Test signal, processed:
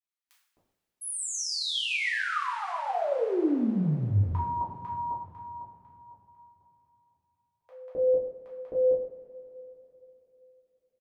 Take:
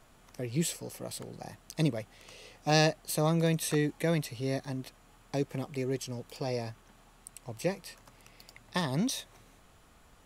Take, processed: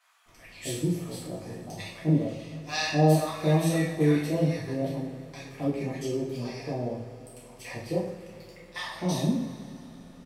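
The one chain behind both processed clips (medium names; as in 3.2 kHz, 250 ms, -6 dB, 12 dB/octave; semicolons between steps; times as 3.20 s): treble shelf 3.3 kHz -8 dB; bands offset in time highs, lows 260 ms, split 960 Hz; two-slope reverb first 0.58 s, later 3.7 s, from -18 dB, DRR -7 dB; trim -3 dB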